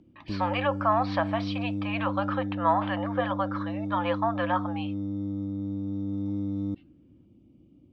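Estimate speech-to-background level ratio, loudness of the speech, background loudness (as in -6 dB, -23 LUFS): 3.0 dB, -29.5 LUFS, -32.5 LUFS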